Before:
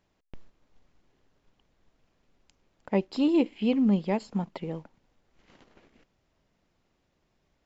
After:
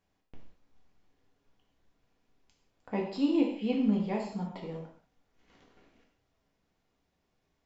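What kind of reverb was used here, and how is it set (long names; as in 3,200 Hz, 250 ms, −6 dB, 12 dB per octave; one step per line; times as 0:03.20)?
reverb whose tail is shaped and stops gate 220 ms falling, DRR −2 dB
level −8 dB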